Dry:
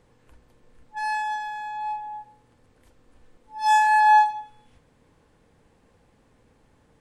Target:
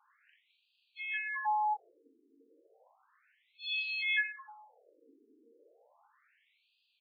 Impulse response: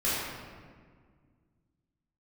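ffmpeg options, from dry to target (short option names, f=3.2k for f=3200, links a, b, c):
-filter_complex "[0:a]asplit=2[a][b];[b]asetrate=55563,aresample=44100,atempo=0.793701,volume=-10dB[c];[a][c]amix=inputs=2:normalize=0,aecho=1:1:39|61:0.668|0.422,afftfilt=real='re*between(b*sr/1024,320*pow(3500/320,0.5+0.5*sin(2*PI*0.33*pts/sr))/1.41,320*pow(3500/320,0.5+0.5*sin(2*PI*0.33*pts/sr))*1.41)':imag='im*between(b*sr/1024,320*pow(3500/320,0.5+0.5*sin(2*PI*0.33*pts/sr))/1.41,320*pow(3500/320,0.5+0.5*sin(2*PI*0.33*pts/sr))*1.41)':win_size=1024:overlap=0.75"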